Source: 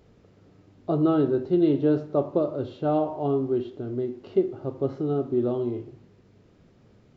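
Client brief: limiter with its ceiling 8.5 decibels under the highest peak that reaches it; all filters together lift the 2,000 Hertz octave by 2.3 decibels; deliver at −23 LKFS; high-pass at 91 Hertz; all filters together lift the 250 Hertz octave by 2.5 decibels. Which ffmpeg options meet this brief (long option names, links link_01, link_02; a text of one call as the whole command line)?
ffmpeg -i in.wav -af "highpass=91,equalizer=frequency=250:width_type=o:gain=3.5,equalizer=frequency=2000:width_type=o:gain=3.5,volume=4.5dB,alimiter=limit=-13dB:level=0:latency=1" out.wav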